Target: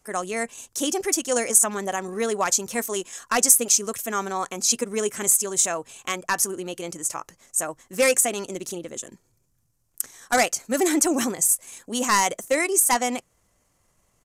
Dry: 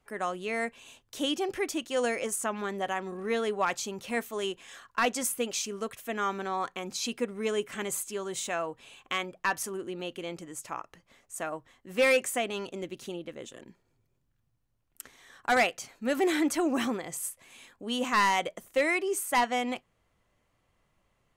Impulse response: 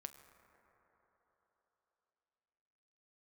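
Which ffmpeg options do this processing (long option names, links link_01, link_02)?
-af "aresample=32000,aresample=44100,highshelf=frequency=4700:width_type=q:width=1.5:gain=10.5,atempo=1.5,volume=5dB"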